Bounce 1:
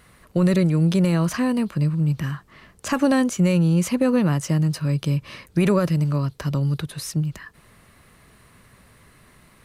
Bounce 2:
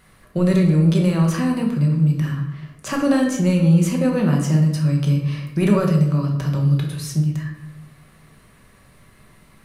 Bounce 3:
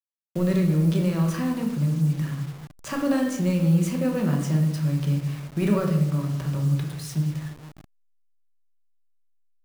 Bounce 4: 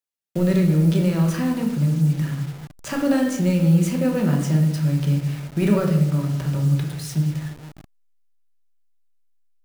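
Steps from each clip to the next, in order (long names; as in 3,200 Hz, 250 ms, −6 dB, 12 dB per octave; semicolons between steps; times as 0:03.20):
rectangular room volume 280 cubic metres, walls mixed, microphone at 1.1 metres; level −2.5 dB
hold until the input has moved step −33 dBFS; level −5.5 dB
notch filter 1,100 Hz, Q 9.6; level +3.5 dB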